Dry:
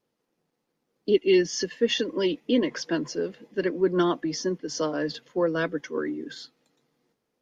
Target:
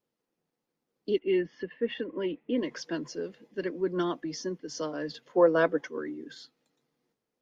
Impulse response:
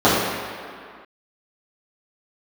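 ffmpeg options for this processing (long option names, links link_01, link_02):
-filter_complex "[0:a]asplit=3[link_01][link_02][link_03];[link_01]afade=type=out:start_time=1.18:duration=0.02[link_04];[link_02]lowpass=frequency=2600:width=0.5412,lowpass=frequency=2600:width=1.3066,afade=type=in:start_time=1.18:duration=0.02,afade=type=out:start_time=2.57:duration=0.02[link_05];[link_03]afade=type=in:start_time=2.57:duration=0.02[link_06];[link_04][link_05][link_06]amix=inputs=3:normalize=0,asettb=1/sr,asplit=3[link_07][link_08][link_09];[link_07]atrim=end=5.274[link_10];[link_08]atrim=start=5.27:end=5.88,asetpts=PTS-STARTPTS,afade=type=in:duration=0.004:curve=qsin,afade=type=out:start_time=0.606:duration=0.004:curve=qsin,equalizer=frequency=730:width_type=o:width=2.3:gain=13[link_11];[link_09]atrim=start=5.876[link_12];[link_10][link_11]acrossfade=duration=0.004:curve1=hsin:curve2=qsin[link_13];[link_13][link_12]acrossfade=duration=0.004:curve1=qsin:curve2=hsin,volume=-6.5dB"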